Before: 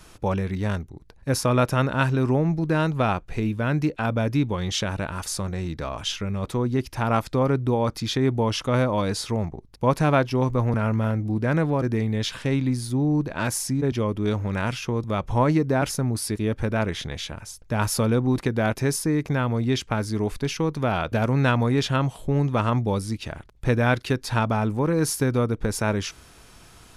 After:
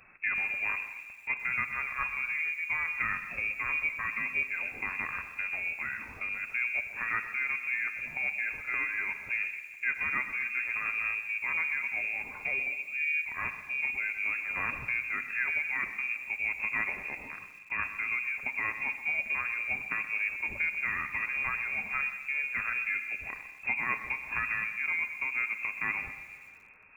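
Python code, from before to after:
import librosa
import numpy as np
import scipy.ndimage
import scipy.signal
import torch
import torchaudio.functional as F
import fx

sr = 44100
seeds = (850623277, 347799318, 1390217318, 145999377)

p1 = fx.spec_quant(x, sr, step_db=15)
p2 = fx.low_shelf(p1, sr, hz=71.0, db=-10.0)
p3 = fx.rider(p2, sr, range_db=4, speed_s=0.5)
p4 = p3 + fx.echo_single(p3, sr, ms=220, db=-22.0, dry=0)
p5 = fx.room_shoebox(p4, sr, seeds[0], volume_m3=3000.0, walls='mixed', distance_m=0.74)
p6 = fx.freq_invert(p5, sr, carrier_hz=2600)
p7 = fx.echo_crushed(p6, sr, ms=125, feedback_pct=35, bits=7, wet_db=-13.0)
y = F.gain(torch.from_numpy(p7), -9.0).numpy()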